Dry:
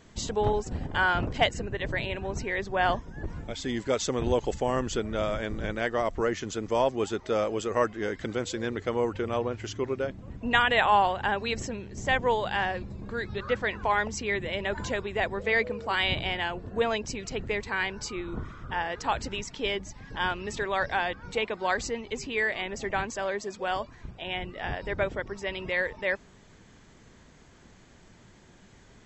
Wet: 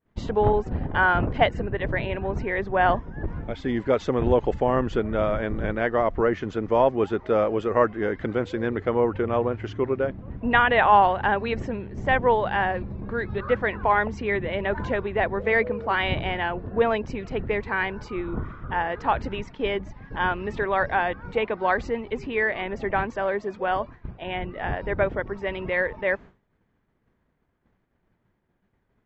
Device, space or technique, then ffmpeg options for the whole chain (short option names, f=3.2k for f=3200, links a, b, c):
hearing-loss simulation: -filter_complex "[0:a]asettb=1/sr,asplit=3[a][b][c];[a]atrim=end=10.924[d];[b]atrim=start=10.92:end=11.35,asetpts=PTS-STARTPTS,afade=t=in:d=0.004:c=qsin,afade=t=out:st=0.426:d=0.004:c=qsin,highshelf=f=5.4k:g=8[e];[c]atrim=start=11.346[f];[d][e]acrossfade=d=0.004:c1=hsin:c2=qsin[g];[g][f]acrossfade=d=0.004:c1=qsin:c2=hsin,lowpass=1.9k,agate=range=-33dB:threshold=-41dB:ratio=3:detection=peak,volume=5.5dB"